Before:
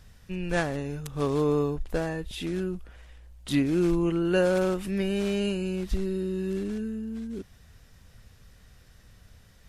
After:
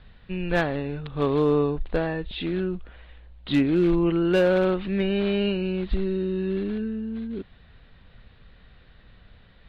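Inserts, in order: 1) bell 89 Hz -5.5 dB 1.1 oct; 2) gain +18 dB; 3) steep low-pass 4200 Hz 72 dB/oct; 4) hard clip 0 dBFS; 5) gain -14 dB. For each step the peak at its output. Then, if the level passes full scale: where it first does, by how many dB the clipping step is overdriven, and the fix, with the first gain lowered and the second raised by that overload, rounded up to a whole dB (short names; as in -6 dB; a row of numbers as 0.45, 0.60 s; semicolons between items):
-13.0, +5.0, +5.0, 0.0, -14.0 dBFS; step 2, 5.0 dB; step 2 +13 dB, step 5 -9 dB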